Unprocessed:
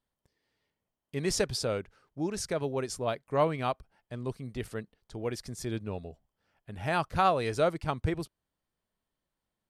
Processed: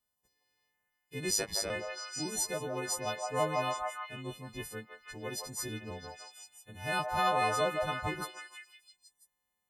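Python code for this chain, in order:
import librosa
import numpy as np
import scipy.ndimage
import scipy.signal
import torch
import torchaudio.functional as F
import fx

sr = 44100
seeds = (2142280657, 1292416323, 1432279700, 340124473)

y = fx.freq_snap(x, sr, grid_st=3)
y = fx.echo_stepped(y, sr, ms=165, hz=830.0, octaves=0.7, feedback_pct=70, wet_db=0.0)
y = fx.ring_mod(y, sr, carrier_hz=52.0, at=(1.3, 1.7))
y = F.gain(torch.from_numpy(y), -6.0).numpy()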